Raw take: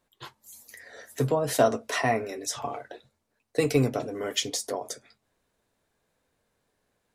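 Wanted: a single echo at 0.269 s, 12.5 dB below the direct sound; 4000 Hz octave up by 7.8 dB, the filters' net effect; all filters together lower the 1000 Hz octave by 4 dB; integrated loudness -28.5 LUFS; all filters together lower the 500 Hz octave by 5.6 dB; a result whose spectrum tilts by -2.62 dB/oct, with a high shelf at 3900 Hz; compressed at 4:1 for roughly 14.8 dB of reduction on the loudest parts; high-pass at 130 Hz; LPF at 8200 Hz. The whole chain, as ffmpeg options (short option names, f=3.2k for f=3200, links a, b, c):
-af "highpass=130,lowpass=8.2k,equalizer=f=500:t=o:g=-6.5,equalizer=f=1k:t=o:g=-3,highshelf=f=3.9k:g=3,equalizer=f=4k:t=o:g=9,acompressor=threshold=-34dB:ratio=4,aecho=1:1:269:0.237,volume=9dB"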